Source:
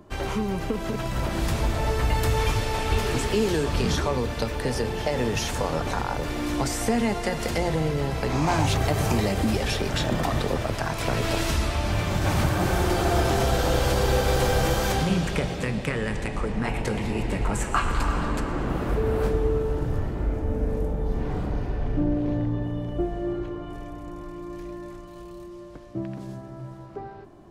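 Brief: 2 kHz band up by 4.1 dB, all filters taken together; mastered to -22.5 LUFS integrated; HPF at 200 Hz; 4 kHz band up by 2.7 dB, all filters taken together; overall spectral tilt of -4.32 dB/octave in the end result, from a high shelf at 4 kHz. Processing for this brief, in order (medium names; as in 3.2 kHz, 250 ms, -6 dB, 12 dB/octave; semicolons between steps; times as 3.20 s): high-pass 200 Hz; peaking EQ 2 kHz +5.5 dB; treble shelf 4 kHz -7.5 dB; peaking EQ 4 kHz +6 dB; trim +4.5 dB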